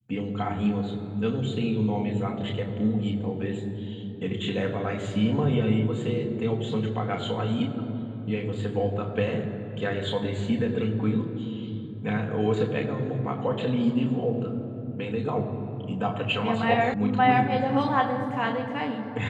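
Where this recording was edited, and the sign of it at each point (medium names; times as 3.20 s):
16.94 s: sound stops dead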